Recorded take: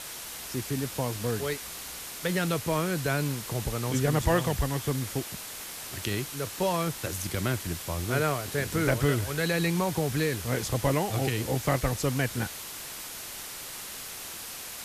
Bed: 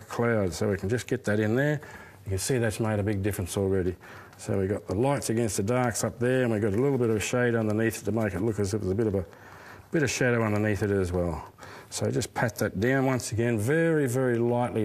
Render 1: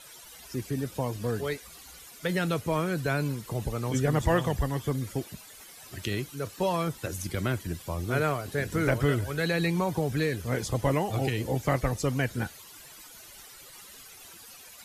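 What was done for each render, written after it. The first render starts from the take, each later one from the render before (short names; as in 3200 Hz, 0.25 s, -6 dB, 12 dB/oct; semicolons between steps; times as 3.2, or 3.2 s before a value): denoiser 14 dB, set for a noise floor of -40 dBFS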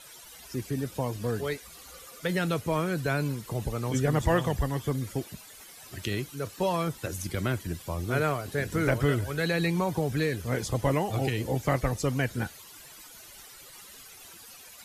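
1.77–2.2 small resonant body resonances 520/1200 Hz, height 12 dB -> 16 dB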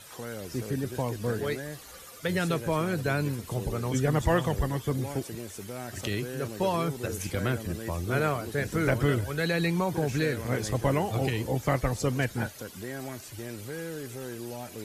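add bed -13.5 dB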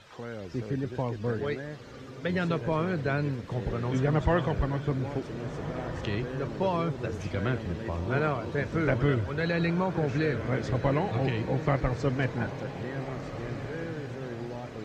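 air absorption 180 m; diffused feedback echo 1.558 s, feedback 47%, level -10.5 dB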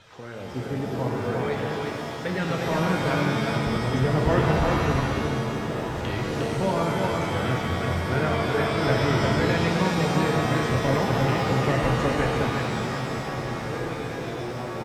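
echo 0.356 s -3.5 dB; shimmer reverb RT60 1.8 s, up +7 st, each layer -2 dB, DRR 2 dB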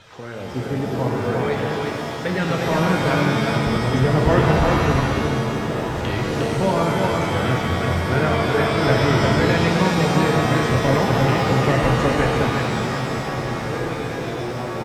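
gain +5 dB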